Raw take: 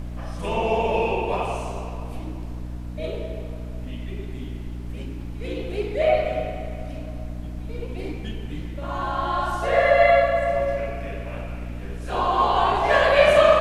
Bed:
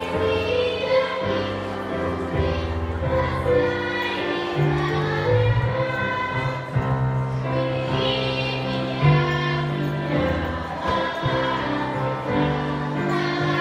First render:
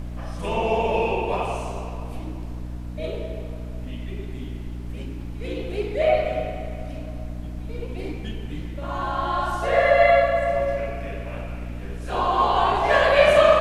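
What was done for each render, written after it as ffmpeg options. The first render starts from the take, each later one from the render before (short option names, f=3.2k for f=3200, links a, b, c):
-af anull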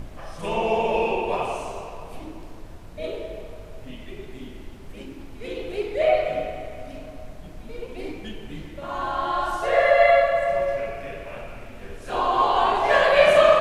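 -af "bandreject=f=60:t=h:w=6,bandreject=f=120:t=h:w=6,bandreject=f=180:t=h:w=6,bandreject=f=240:t=h:w=6,bandreject=f=300:t=h:w=6"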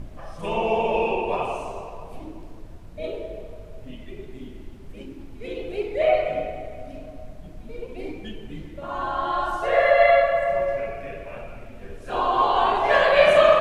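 -af "afftdn=nr=6:nf=-41"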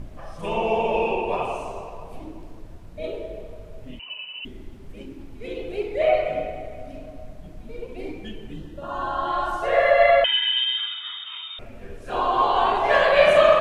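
-filter_complex "[0:a]asettb=1/sr,asplit=3[a][b][c];[a]atrim=end=3.994[d];[b]atrim=start=3.99:end=4.45,asetpts=PTS-STARTPTS,afade=t=in:d=0.004:c=qsin,afade=t=out:st=0.456:d=0.004:c=qsin,lowpass=f=2.6k:t=q:w=0.5098,lowpass=f=2.6k:t=q:w=0.6013,lowpass=f=2.6k:t=q:w=0.9,lowpass=f=2.6k:t=q:w=2.563,afreqshift=-3000[e];[c]atrim=start=4.446[f];[d][e]acrossfade=d=0.004:c1=hsin:c2=qsin[g];[g][f]acrossfade=d=0.004:c1=qsin:c2=hsin,asettb=1/sr,asplit=3[h][i][j];[h]atrim=end=8.534[k];[i]atrim=start=8.53:end=9.28,asetpts=PTS-STARTPTS,afade=t=in:d=0.004:c=qsin,afade=t=out:st=0.746:d=0.004:c=qsin,asuperstop=centerf=2200:order=4:qfactor=3.6[l];[j]atrim=start=9.276[m];[k][l]acrossfade=d=0.004:c1=hsin:c2=qsin[n];[n][m]acrossfade=d=0.004:c1=qsin:c2=hsin,asettb=1/sr,asplit=3[o][p][q];[o]atrim=end=10.244[r];[p]atrim=start=10.24:end=11.59,asetpts=PTS-STARTPTS,afade=t=in:d=0.004:c=qsin,afade=t=out:st=1.346:d=0.004:c=qsin,lowpass=f=3.1k:t=q:w=0.5098,lowpass=f=3.1k:t=q:w=0.6013,lowpass=f=3.1k:t=q:w=0.9,lowpass=f=3.1k:t=q:w=2.563,afreqshift=-3700[s];[q]atrim=start=11.586[t];[r][s]acrossfade=d=0.004:c1=hsin:c2=qsin[u];[u][t]acrossfade=d=0.004:c1=qsin:c2=hsin"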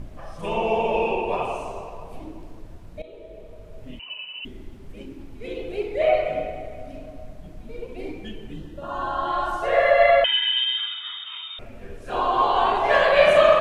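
-filter_complex "[0:a]asplit=2[a][b];[a]atrim=end=3.02,asetpts=PTS-STARTPTS,afade=t=out:st=3.016:d=0.004:c=hsin:silence=0.149624[c];[b]atrim=start=3.02,asetpts=PTS-STARTPTS,afade=t=in:d=0.87:silence=0.149624[d];[c][d]concat=n=2:v=0:a=1"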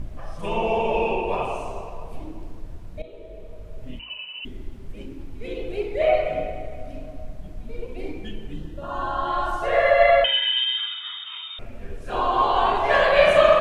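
-af "lowshelf=f=110:g=6.5,bandreject=f=54.34:t=h:w=4,bandreject=f=108.68:t=h:w=4,bandreject=f=163.02:t=h:w=4,bandreject=f=217.36:t=h:w=4,bandreject=f=271.7:t=h:w=4,bandreject=f=326.04:t=h:w=4,bandreject=f=380.38:t=h:w=4,bandreject=f=434.72:t=h:w=4,bandreject=f=489.06:t=h:w=4,bandreject=f=543.4:t=h:w=4,bandreject=f=597.74:t=h:w=4,bandreject=f=652.08:t=h:w=4,bandreject=f=706.42:t=h:w=4,bandreject=f=760.76:t=h:w=4,bandreject=f=815.1:t=h:w=4,bandreject=f=869.44:t=h:w=4"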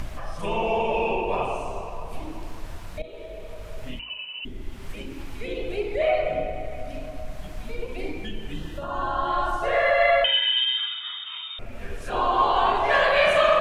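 -filter_complex "[0:a]acrossover=split=780[a][b];[a]alimiter=limit=-19dB:level=0:latency=1[c];[b]acompressor=mode=upward:threshold=-34dB:ratio=2.5[d];[c][d]amix=inputs=2:normalize=0"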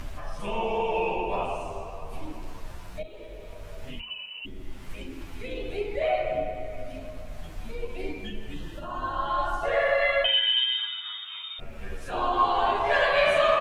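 -filter_complex "[0:a]acrusher=bits=11:mix=0:aa=0.000001,asplit=2[a][b];[b]adelay=10,afreqshift=-0.53[c];[a][c]amix=inputs=2:normalize=1"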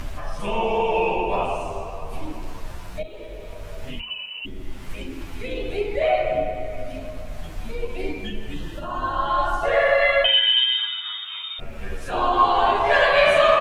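-af "volume=5.5dB"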